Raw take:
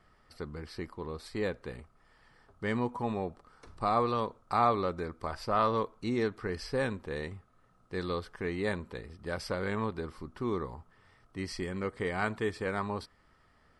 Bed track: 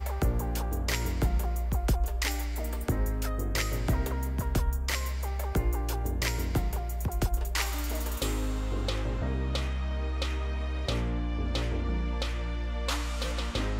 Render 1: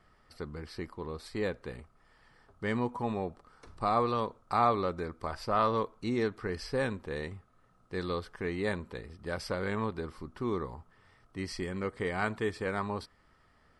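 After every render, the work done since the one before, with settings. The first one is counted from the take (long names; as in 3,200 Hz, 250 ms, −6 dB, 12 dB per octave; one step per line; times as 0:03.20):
no processing that can be heard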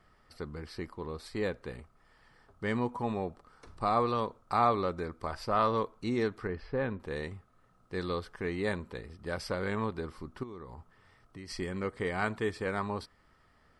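0:06.47–0:07.00: high-frequency loss of the air 390 metres
0:10.43–0:11.50: downward compressor 5 to 1, threshold −42 dBFS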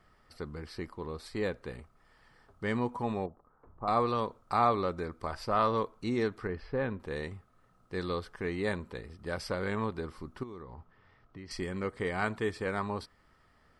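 0:03.26–0:03.88: transistor ladder low-pass 1,400 Hz, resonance 20%
0:10.62–0:11.51: high-frequency loss of the air 160 metres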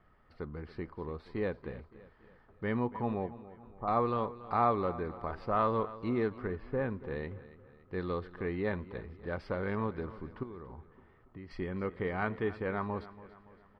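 high-frequency loss of the air 390 metres
repeating echo 283 ms, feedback 47%, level −16.5 dB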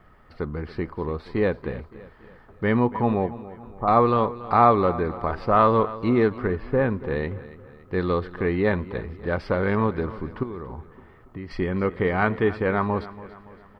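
level +11.5 dB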